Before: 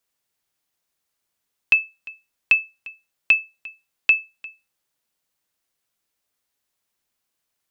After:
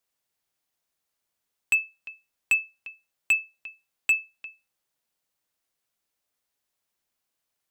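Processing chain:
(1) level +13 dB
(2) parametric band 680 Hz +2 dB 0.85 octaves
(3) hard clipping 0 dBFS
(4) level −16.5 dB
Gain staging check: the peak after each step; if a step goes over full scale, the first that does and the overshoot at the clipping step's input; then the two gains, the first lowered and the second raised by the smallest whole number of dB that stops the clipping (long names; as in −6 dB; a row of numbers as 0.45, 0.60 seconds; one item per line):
+7.0, +7.5, 0.0, −16.5 dBFS
step 1, 7.5 dB
step 1 +5 dB, step 4 −8.5 dB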